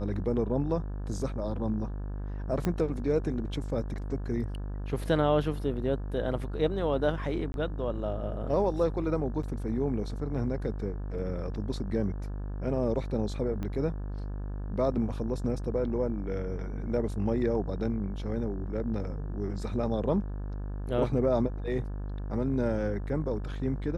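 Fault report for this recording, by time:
mains buzz 50 Hz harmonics 35 −35 dBFS
0:02.65: click −16 dBFS
0:07.52–0:07.54: drop-out 21 ms
0:09.43: drop-out 4 ms
0:13.63: click −23 dBFS

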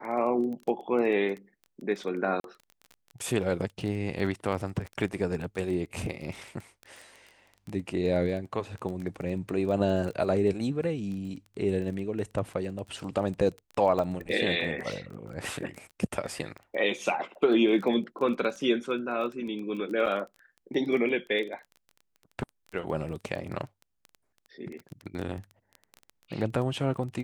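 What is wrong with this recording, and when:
surface crackle 16 per second −34 dBFS
0:02.40–0:02.44: drop-out 42 ms
0:13.99: drop-out 2.6 ms
0:20.06–0:20.07: drop-out 6.3 ms

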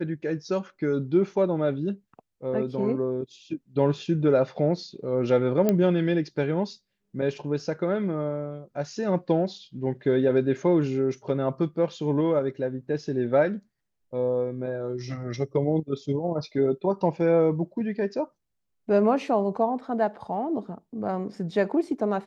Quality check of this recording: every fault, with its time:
0:05.69: click −10 dBFS

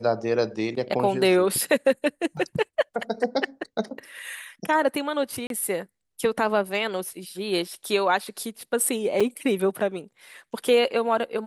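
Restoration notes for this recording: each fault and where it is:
0:02.37: drop-out 2 ms
0:05.47–0:05.50: drop-out 32 ms
0:09.20–0:09.21: drop-out 5 ms

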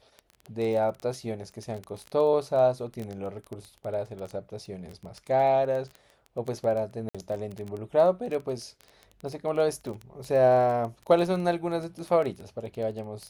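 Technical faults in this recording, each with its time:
surface crackle 13 per second −31 dBFS
0:07.09–0:07.15: drop-out 56 ms

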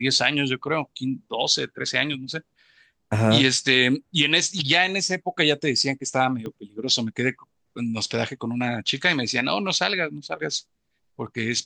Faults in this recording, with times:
0:06.46: click −22 dBFS

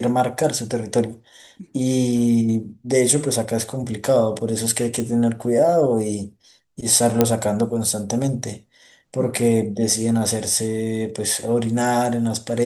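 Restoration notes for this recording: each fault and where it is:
0:05.00: click −13 dBFS
0:07.21: click −1 dBFS

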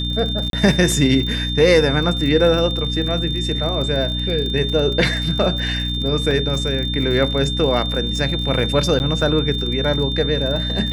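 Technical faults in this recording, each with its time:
surface crackle 40 per second −25 dBFS
mains hum 60 Hz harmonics 5 −24 dBFS
whistle 3,600 Hz −24 dBFS
0:00.50–0:00.53: drop-out 32 ms
0:06.31: drop-out 2.3 ms
0:08.99–0:09.00: drop-out 9.7 ms

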